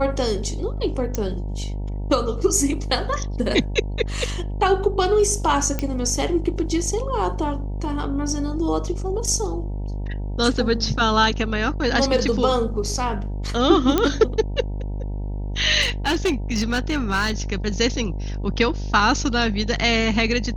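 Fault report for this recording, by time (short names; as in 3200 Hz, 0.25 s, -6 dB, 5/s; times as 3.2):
buzz 50 Hz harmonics 19 -27 dBFS
1.15 pop -11 dBFS
5.79 pop -11 dBFS
13.98 pop -5 dBFS
15.81–17.32 clipped -16 dBFS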